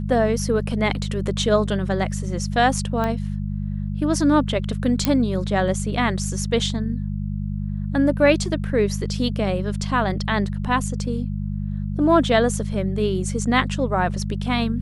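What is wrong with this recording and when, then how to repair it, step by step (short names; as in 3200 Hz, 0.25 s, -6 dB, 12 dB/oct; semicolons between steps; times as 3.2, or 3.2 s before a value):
hum 50 Hz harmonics 4 -26 dBFS
3.04 pop -13 dBFS
5.05 pop -3 dBFS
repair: de-click; de-hum 50 Hz, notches 4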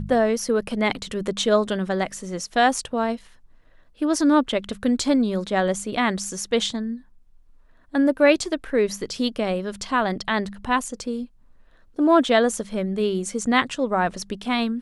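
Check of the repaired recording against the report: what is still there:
none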